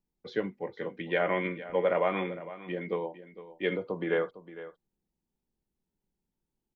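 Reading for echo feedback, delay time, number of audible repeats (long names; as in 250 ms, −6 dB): repeats not evenly spaced, 456 ms, 1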